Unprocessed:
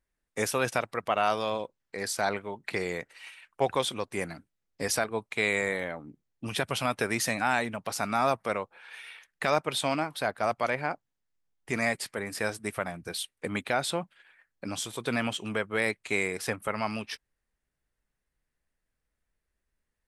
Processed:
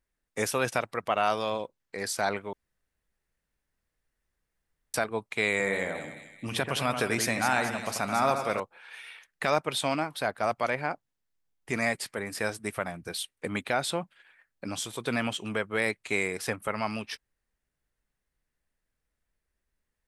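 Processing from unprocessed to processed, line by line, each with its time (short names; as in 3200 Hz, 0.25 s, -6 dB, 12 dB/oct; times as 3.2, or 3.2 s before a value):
2.53–4.94 room tone
5.51–8.6 split-band echo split 2200 Hz, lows 86 ms, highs 0.218 s, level -7 dB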